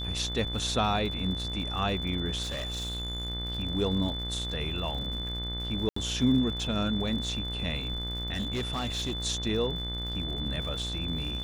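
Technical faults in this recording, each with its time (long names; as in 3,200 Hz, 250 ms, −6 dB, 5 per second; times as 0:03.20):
mains buzz 60 Hz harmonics 37 −36 dBFS
surface crackle 110 per second −39 dBFS
whistle 3,500 Hz −35 dBFS
0:02.42–0:03.29: clipping −30 dBFS
0:05.89–0:05.96: drop-out 74 ms
0:08.33–0:09.13: clipping −27 dBFS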